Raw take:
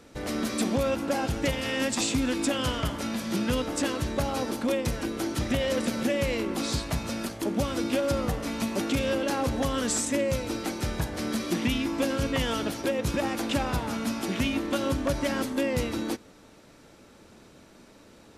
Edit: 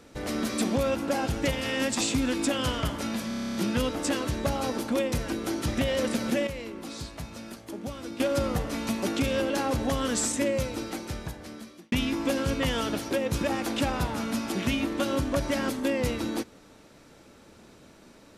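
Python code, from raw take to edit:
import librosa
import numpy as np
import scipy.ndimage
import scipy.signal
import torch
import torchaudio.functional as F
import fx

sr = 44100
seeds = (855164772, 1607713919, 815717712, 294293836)

y = fx.edit(x, sr, fx.stutter(start_s=3.28, slice_s=0.03, count=10),
    fx.clip_gain(start_s=6.2, length_s=1.73, db=-9.0),
    fx.fade_out_span(start_s=10.21, length_s=1.44), tone=tone)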